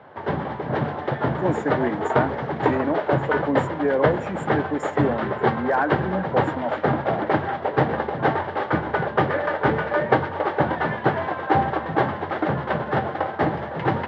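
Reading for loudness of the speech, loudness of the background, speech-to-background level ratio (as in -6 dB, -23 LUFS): -26.5 LUFS, -24.0 LUFS, -2.5 dB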